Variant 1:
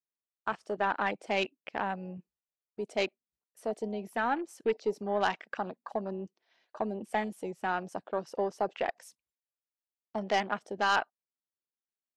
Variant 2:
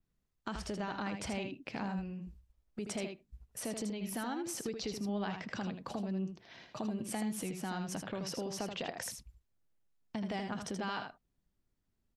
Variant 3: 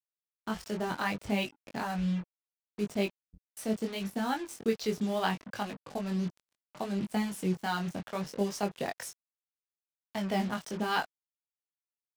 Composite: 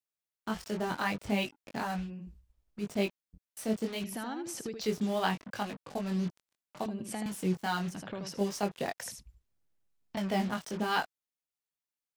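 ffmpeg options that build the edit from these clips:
-filter_complex "[1:a]asplit=5[s0][s1][s2][s3][s4];[2:a]asplit=6[s5][s6][s7][s8][s9][s10];[s5]atrim=end=2.11[s11];[s0]atrim=start=1.95:end=2.89[s12];[s6]atrim=start=2.73:end=4.042[s13];[s1]atrim=start=4.038:end=4.812[s14];[s7]atrim=start=4.808:end=6.862[s15];[s2]atrim=start=6.858:end=7.262[s16];[s8]atrim=start=7.258:end=8.02[s17];[s3]atrim=start=7.86:end=8.43[s18];[s9]atrim=start=8.27:end=9.022[s19];[s4]atrim=start=9.018:end=10.172[s20];[s10]atrim=start=10.168[s21];[s11][s12]acrossfade=d=0.16:c1=tri:c2=tri[s22];[s22][s13]acrossfade=d=0.16:c1=tri:c2=tri[s23];[s23][s14]acrossfade=d=0.004:c1=hsin:c2=hsin[s24];[s24][s15]acrossfade=d=0.004:c1=hsin:c2=hsin[s25];[s25][s16]acrossfade=d=0.004:c1=hsin:c2=hsin[s26];[s26][s17]acrossfade=d=0.004:c1=hsin:c2=hsin[s27];[s27][s18]acrossfade=d=0.16:c1=tri:c2=tri[s28];[s28][s19]acrossfade=d=0.16:c1=tri:c2=tri[s29];[s29][s20]acrossfade=d=0.004:c1=hsin:c2=hsin[s30];[s30][s21]acrossfade=d=0.004:c1=hsin:c2=hsin"

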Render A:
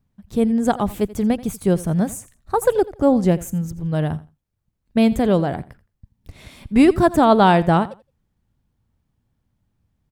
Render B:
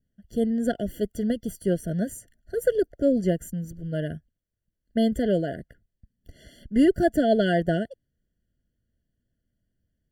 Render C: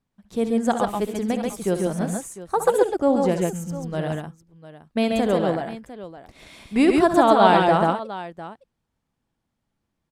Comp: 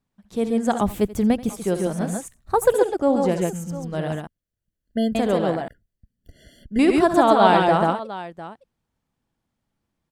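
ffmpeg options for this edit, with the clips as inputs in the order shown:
-filter_complex "[0:a]asplit=2[s0][s1];[1:a]asplit=2[s2][s3];[2:a]asplit=5[s4][s5][s6][s7][s8];[s4]atrim=end=0.812[s9];[s0]atrim=start=0.808:end=1.492[s10];[s5]atrim=start=1.488:end=2.282[s11];[s1]atrim=start=2.278:end=2.742[s12];[s6]atrim=start=2.738:end=4.272[s13];[s2]atrim=start=4.268:end=5.152[s14];[s7]atrim=start=5.148:end=5.682[s15];[s3]atrim=start=5.678:end=6.792[s16];[s8]atrim=start=6.788[s17];[s9][s10]acrossfade=d=0.004:c1=hsin:c2=hsin[s18];[s18][s11]acrossfade=d=0.004:c1=hsin:c2=hsin[s19];[s19][s12]acrossfade=d=0.004:c1=hsin:c2=hsin[s20];[s20][s13]acrossfade=d=0.004:c1=hsin:c2=hsin[s21];[s21][s14]acrossfade=d=0.004:c1=hsin:c2=hsin[s22];[s22][s15]acrossfade=d=0.004:c1=hsin:c2=hsin[s23];[s23][s16]acrossfade=d=0.004:c1=hsin:c2=hsin[s24];[s24][s17]acrossfade=d=0.004:c1=hsin:c2=hsin"

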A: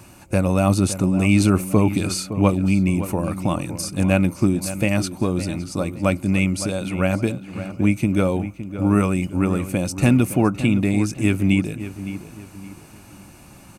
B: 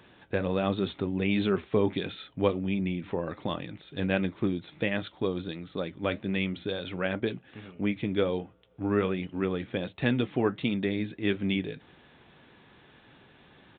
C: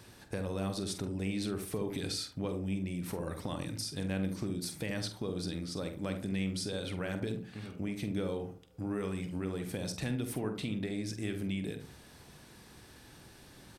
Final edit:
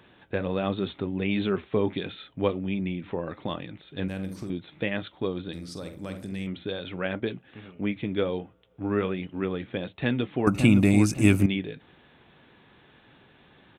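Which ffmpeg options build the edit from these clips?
-filter_complex "[2:a]asplit=2[s0][s1];[1:a]asplit=4[s2][s3][s4][s5];[s2]atrim=end=4.082[s6];[s0]atrim=start=4.078:end=4.502[s7];[s3]atrim=start=4.498:end=5.532[s8];[s1]atrim=start=5.528:end=6.472[s9];[s4]atrim=start=6.468:end=10.472[s10];[0:a]atrim=start=10.468:end=11.462[s11];[s5]atrim=start=11.458[s12];[s6][s7]acrossfade=d=0.004:c1=hsin:c2=hsin[s13];[s13][s8]acrossfade=d=0.004:c1=hsin:c2=hsin[s14];[s14][s9]acrossfade=d=0.004:c1=hsin:c2=hsin[s15];[s15][s10]acrossfade=d=0.004:c1=hsin:c2=hsin[s16];[s16][s11]acrossfade=d=0.004:c1=hsin:c2=hsin[s17];[s17][s12]acrossfade=d=0.004:c1=hsin:c2=hsin"

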